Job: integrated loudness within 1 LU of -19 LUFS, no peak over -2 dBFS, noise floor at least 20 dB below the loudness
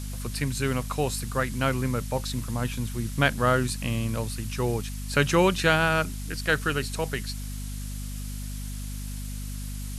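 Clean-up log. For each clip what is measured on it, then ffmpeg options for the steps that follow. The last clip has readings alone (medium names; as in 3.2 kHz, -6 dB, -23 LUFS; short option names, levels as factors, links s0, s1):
hum 50 Hz; highest harmonic 250 Hz; hum level -32 dBFS; noise floor -34 dBFS; noise floor target -48 dBFS; loudness -27.5 LUFS; peak level -6.5 dBFS; loudness target -19.0 LUFS
-> -af "bandreject=f=50:t=h:w=4,bandreject=f=100:t=h:w=4,bandreject=f=150:t=h:w=4,bandreject=f=200:t=h:w=4,bandreject=f=250:t=h:w=4"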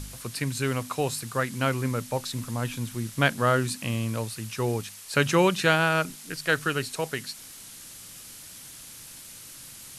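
hum not found; noise floor -45 dBFS; noise floor target -47 dBFS
-> -af "afftdn=nr=6:nf=-45"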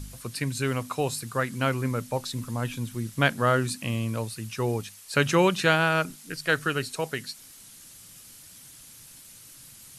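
noise floor -49 dBFS; loudness -27.0 LUFS; peak level -7.0 dBFS; loudness target -19.0 LUFS
-> -af "volume=2.51,alimiter=limit=0.794:level=0:latency=1"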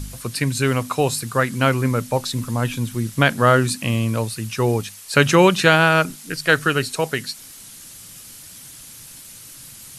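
loudness -19.5 LUFS; peak level -2.0 dBFS; noise floor -41 dBFS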